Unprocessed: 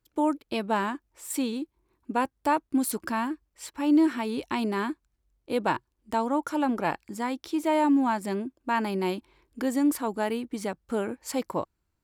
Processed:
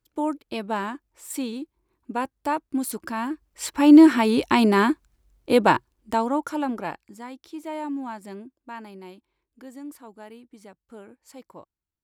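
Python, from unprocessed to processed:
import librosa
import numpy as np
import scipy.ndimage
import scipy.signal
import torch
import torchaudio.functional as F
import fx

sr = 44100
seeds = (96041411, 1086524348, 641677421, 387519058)

y = fx.gain(x, sr, db=fx.line((3.15, -1.0), (3.67, 10.0), (5.52, 10.0), (6.73, -1.5), (7.19, -8.5), (8.42, -8.5), (9.1, -15.0)))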